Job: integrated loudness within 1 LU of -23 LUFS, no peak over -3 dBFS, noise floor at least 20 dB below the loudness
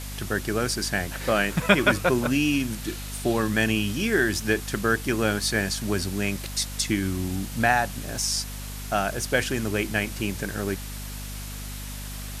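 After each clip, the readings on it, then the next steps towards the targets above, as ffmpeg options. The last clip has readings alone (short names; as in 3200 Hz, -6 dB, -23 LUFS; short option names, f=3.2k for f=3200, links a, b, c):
hum 50 Hz; harmonics up to 250 Hz; hum level -34 dBFS; noise floor -35 dBFS; noise floor target -45 dBFS; loudness -25.0 LUFS; peak -2.5 dBFS; loudness target -23.0 LUFS
-> -af "bandreject=f=50:t=h:w=4,bandreject=f=100:t=h:w=4,bandreject=f=150:t=h:w=4,bandreject=f=200:t=h:w=4,bandreject=f=250:t=h:w=4"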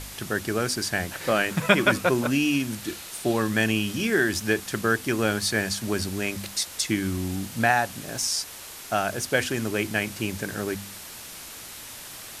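hum none; noise floor -41 dBFS; noise floor target -46 dBFS
-> -af "afftdn=nr=6:nf=-41"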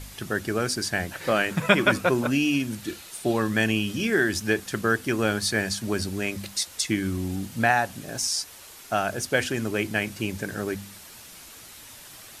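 noise floor -46 dBFS; loudness -25.5 LUFS; peak -2.5 dBFS; loudness target -23.0 LUFS
-> -af "volume=2.5dB,alimiter=limit=-3dB:level=0:latency=1"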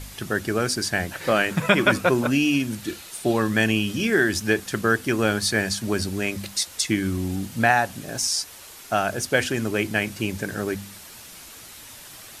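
loudness -23.0 LUFS; peak -3.0 dBFS; noise floor -43 dBFS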